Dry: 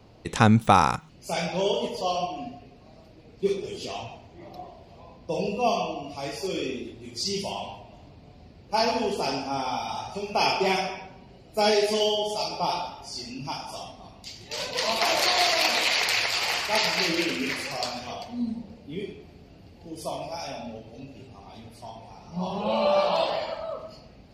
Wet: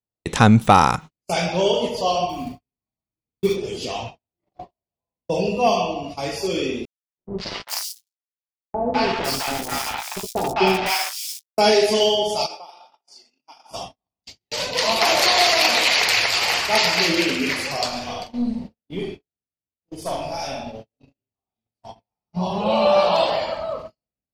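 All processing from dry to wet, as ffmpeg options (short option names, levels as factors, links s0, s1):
-filter_complex "[0:a]asettb=1/sr,asplit=3[s0][s1][s2];[s0]atrim=end=2.294[s3];[s1]atrim=start=2.29:end=3.56,asetpts=PTS-STARTPTS,afade=t=in:d=0.004:c=qsin,afade=t=out:st=1.266:d=0.004:c=qsin,aecho=1:1:0.9:0.51,atrim=end_sample=56007,acrusher=bits=6:mode=log:mix=0:aa=0.000001[s4];[s2]atrim=start=3.556[s5];[s3][s4]acrossfade=d=0.004:c1=hsin:c2=qsin[s6];[s6][s5]acrossfade=d=0.004:c1=qsin:c2=hsin,asettb=1/sr,asplit=3[s7][s8][s9];[s7]atrim=end=6.854[s10];[s8]atrim=start=6.85:end=11.58,asetpts=PTS-STARTPTS,afade=t=in:d=0.004:c=qsin,afade=t=out:st=4.726:d=0.004:c=qsin,aeval=exprs='val(0)*gte(abs(val(0)),0.0501)':c=same,asplit=2[s11][s12];[s12]adelay=16,volume=0.398[s13];[s11][s13]amix=inputs=2:normalize=0,atrim=end_sample=208593,acrossover=split=720|4300[s14][s15][s16];[s15]adelay=210[s17];[s16]adelay=510[s18];[s14][s17][s18]amix=inputs=3:normalize=0,atrim=end_sample=208593[s19];[s9]atrim=start=11.576[s20];[s10][s19]acrossfade=d=0.004:c1=hsin:c2=qsin[s21];[s21][s20]acrossfade=d=0.004:c1=qsin:c2=hsin,asettb=1/sr,asplit=3[s22][s23][s24];[s22]atrim=end=12.464[s25];[s23]atrim=start=12.46:end=13.71,asetpts=PTS-STARTPTS,afade=t=in:d=0.004:c=qsin,afade=t=out:st=1.246:d=0.004:c=qsin,highpass=470,acompressor=threshold=0.0158:ratio=16:attack=3.2:release=140:knee=1:detection=peak[s26];[s24]atrim=start=13.706[s27];[s25][s26]acrossfade=d=0.004:c1=hsin:c2=qsin[s28];[s28][s27]acrossfade=d=0.004:c1=qsin:c2=hsin,asettb=1/sr,asplit=3[s29][s30][s31];[s29]atrim=end=17.884[s32];[s30]atrim=start=17.88:end=21.75,asetpts=PTS-STARTPTS,afade=t=in:d=0.004:c=qsin,afade=t=out:st=3.866:d=0.004:c=qsin,agate=range=0.0224:threshold=0.00708:ratio=3:release=100:detection=peak,aeval=exprs='(tanh(15.8*val(0)+0.3)-tanh(0.3))/15.8':c=same,asplit=2[s33][s34];[s34]adelay=45,volume=0.562[s35];[s33][s35]amix=inputs=2:normalize=0,atrim=end_sample=170667[s36];[s31]atrim=start=21.746[s37];[s32][s36]acrossfade=d=0.004:c1=hsin:c2=qsin[s38];[s38][s37]acrossfade=d=0.004:c1=qsin:c2=hsin,agate=range=0.00316:threshold=0.0126:ratio=16:detection=peak,acontrast=59"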